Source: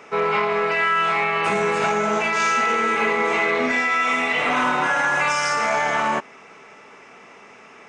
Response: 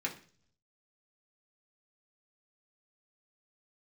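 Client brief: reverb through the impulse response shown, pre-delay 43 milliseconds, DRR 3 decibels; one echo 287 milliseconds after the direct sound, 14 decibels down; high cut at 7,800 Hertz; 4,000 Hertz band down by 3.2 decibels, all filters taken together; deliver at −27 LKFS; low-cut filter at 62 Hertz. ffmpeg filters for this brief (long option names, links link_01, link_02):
-filter_complex "[0:a]highpass=62,lowpass=7800,equalizer=frequency=4000:width_type=o:gain=-4.5,aecho=1:1:287:0.2,asplit=2[link_01][link_02];[1:a]atrim=start_sample=2205,adelay=43[link_03];[link_02][link_03]afir=irnorm=-1:irlink=0,volume=-6.5dB[link_04];[link_01][link_04]amix=inputs=2:normalize=0,volume=-8.5dB"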